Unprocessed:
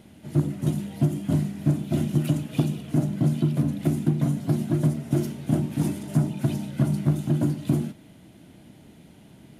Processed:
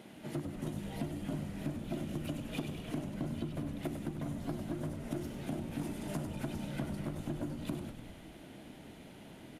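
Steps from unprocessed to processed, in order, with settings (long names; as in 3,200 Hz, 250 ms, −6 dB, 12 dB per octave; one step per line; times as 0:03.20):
high-pass filter 110 Hz
bass and treble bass −9 dB, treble −5 dB
downward compressor 6 to 1, threshold −38 dBFS, peak gain reduction 15 dB
echo with shifted repeats 99 ms, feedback 63%, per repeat −57 Hz, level −8 dB
level +2 dB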